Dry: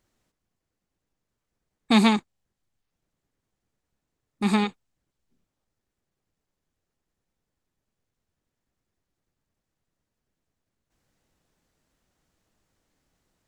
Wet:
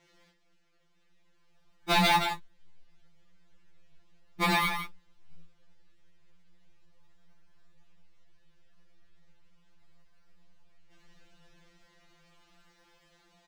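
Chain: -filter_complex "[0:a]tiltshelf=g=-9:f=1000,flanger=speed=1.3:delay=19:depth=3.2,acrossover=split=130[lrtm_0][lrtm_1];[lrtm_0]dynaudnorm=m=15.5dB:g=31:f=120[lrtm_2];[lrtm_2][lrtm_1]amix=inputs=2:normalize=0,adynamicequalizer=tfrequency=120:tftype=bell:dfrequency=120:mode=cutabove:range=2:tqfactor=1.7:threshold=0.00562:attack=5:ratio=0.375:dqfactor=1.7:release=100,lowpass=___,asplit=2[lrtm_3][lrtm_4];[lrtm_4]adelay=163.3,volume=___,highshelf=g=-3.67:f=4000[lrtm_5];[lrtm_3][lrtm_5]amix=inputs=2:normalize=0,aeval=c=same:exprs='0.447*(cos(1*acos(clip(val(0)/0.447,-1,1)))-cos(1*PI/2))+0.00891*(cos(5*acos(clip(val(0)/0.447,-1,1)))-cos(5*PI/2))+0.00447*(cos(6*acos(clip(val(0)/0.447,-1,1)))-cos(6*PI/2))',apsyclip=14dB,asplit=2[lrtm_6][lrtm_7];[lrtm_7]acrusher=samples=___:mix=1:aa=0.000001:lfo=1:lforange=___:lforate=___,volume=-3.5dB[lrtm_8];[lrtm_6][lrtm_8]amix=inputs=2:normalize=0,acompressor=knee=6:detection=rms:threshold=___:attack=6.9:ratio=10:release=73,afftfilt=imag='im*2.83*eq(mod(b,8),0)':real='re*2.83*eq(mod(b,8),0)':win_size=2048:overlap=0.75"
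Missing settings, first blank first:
3500, -19dB, 24, 24, 0.37, -16dB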